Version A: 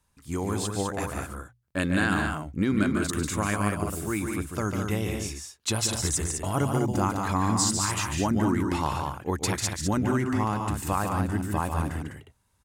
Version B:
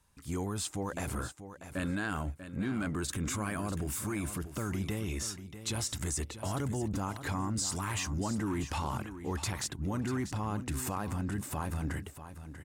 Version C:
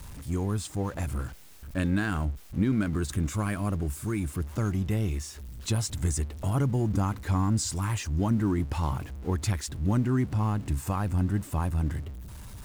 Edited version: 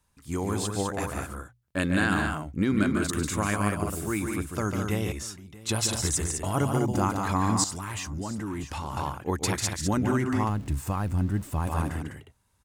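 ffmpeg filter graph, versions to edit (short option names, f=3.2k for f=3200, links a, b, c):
-filter_complex "[1:a]asplit=2[a][b];[0:a]asplit=4[c][d][e][f];[c]atrim=end=5.122[g];[a]atrim=start=5.118:end=5.692[h];[d]atrim=start=5.688:end=7.642[i];[b]atrim=start=7.638:end=8.972[j];[e]atrim=start=8.968:end=10.492[k];[2:a]atrim=start=10.488:end=11.672[l];[f]atrim=start=11.668[m];[g][h]acrossfade=d=0.004:c1=hsin:c2=hsin[n];[n][i]acrossfade=d=0.004:c1=hsin:c2=hsin[o];[o][j]acrossfade=d=0.004:c1=hsin:c2=hsin[p];[p][k]acrossfade=d=0.004:c1=hsin:c2=hsin[q];[q][l]acrossfade=d=0.004:c1=hsin:c2=hsin[r];[r][m]acrossfade=d=0.004:c1=hsin:c2=hsin"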